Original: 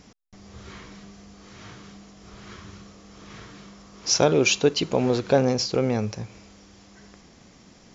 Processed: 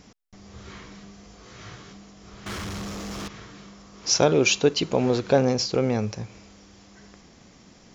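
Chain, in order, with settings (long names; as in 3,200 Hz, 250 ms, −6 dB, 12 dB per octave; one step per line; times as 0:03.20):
0:01.22–0:01.93: double-tracking delay 18 ms −3.5 dB
0:02.46–0:03.28: leveller curve on the samples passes 5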